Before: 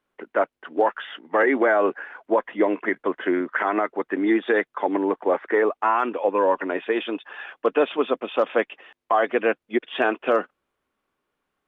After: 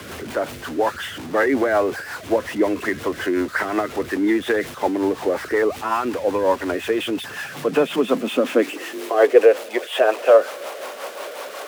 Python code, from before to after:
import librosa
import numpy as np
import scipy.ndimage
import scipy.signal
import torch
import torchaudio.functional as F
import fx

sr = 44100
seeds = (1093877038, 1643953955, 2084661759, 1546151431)

y = x + 0.5 * 10.0 ** (-28.0 / 20.0) * np.sign(x)
y = fx.rotary(y, sr, hz=5.5)
y = fx.filter_sweep_highpass(y, sr, from_hz=85.0, to_hz=570.0, start_s=6.86, end_s=9.72, q=4.1)
y = y * librosa.db_to_amplitude(1.5)